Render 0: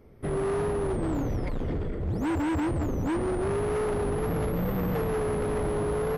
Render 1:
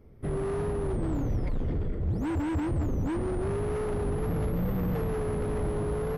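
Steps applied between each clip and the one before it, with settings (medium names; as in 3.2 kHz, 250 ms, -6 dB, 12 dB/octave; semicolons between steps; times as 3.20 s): bass shelf 230 Hz +8 dB; trim -5.5 dB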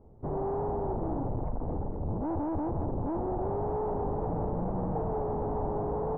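one-sided wavefolder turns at -29.5 dBFS; four-pole ladder low-pass 960 Hz, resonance 60%; trim +8.5 dB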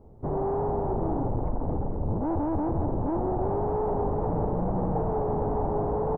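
delay 430 ms -12 dB; trim +4 dB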